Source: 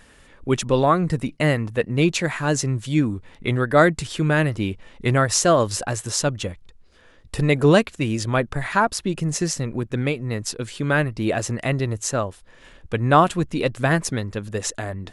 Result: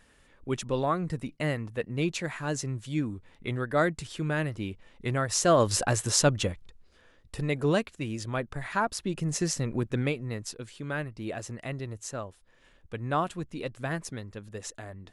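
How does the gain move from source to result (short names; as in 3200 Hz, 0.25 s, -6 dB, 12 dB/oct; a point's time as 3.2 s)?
5.23 s -10 dB
5.76 s -0.5 dB
6.42 s -0.5 dB
7.4 s -10.5 dB
8.48 s -10.5 dB
9.84 s -3 dB
10.75 s -13 dB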